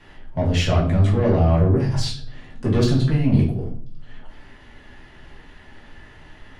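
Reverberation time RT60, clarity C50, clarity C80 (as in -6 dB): 0.50 s, 7.0 dB, 11.5 dB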